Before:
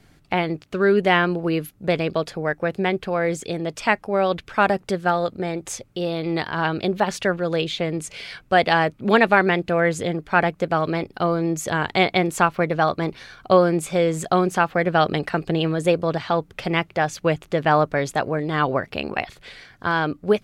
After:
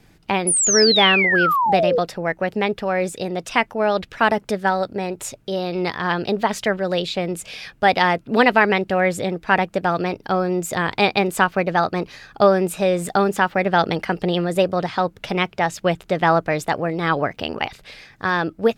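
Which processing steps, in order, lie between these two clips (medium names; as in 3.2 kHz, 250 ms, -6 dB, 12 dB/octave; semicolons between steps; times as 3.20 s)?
painted sound fall, 0.51–2.17 s, 420–9500 Hz -19 dBFS; speed mistake 44.1 kHz file played as 48 kHz; trim +1 dB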